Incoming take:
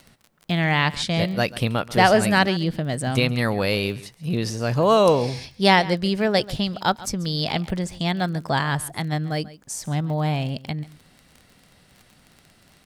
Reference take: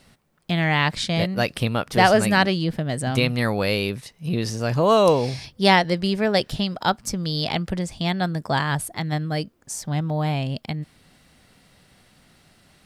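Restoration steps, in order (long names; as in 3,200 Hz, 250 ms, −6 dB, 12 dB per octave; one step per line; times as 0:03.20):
click removal
echo removal 138 ms −18.5 dB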